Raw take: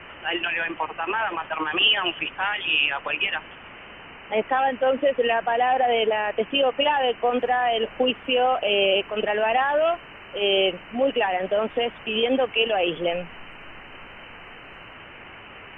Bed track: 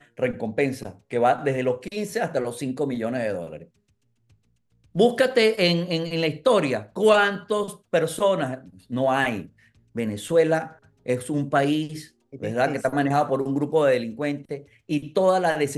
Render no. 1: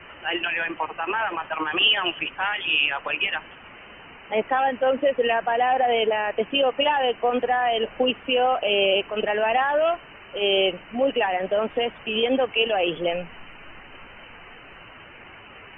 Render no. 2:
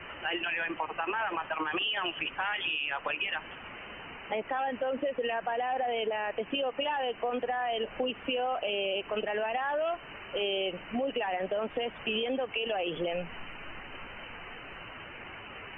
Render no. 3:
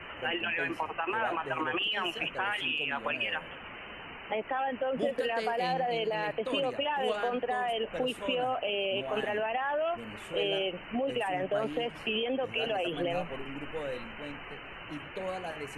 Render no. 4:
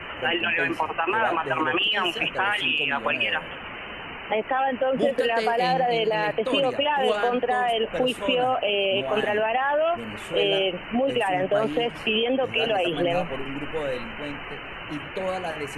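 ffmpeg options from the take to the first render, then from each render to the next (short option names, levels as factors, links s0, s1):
-af "afftdn=nr=6:nf=-43"
-af "alimiter=limit=0.133:level=0:latency=1:release=64,acompressor=threshold=0.0316:ratio=3"
-filter_complex "[1:a]volume=0.133[s0];[0:a][s0]amix=inputs=2:normalize=0"
-af "volume=2.51"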